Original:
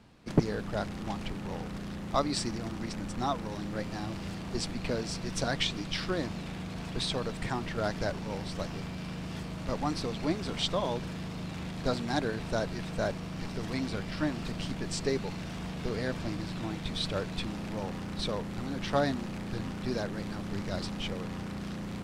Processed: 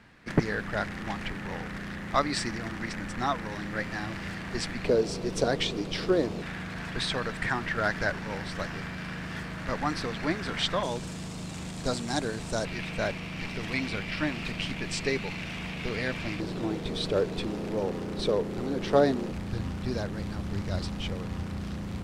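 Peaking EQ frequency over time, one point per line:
peaking EQ +13 dB 0.9 oct
1.8 kHz
from 4.85 s 430 Hz
from 6.42 s 1.7 kHz
from 10.83 s 7.9 kHz
from 12.65 s 2.4 kHz
from 16.40 s 420 Hz
from 19.32 s 74 Hz

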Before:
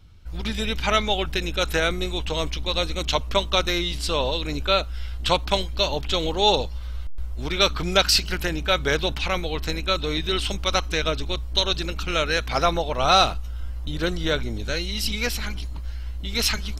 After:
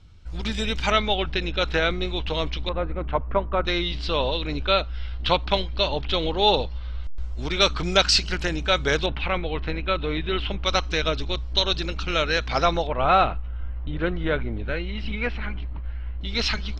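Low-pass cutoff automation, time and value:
low-pass 24 dB/octave
8.6 kHz
from 0.92 s 4.5 kHz
from 2.69 s 1.7 kHz
from 3.65 s 4.3 kHz
from 7.04 s 7.2 kHz
from 9.06 s 3.1 kHz
from 10.64 s 5.7 kHz
from 12.87 s 2.6 kHz
from 16.21 s 4.8 kHz

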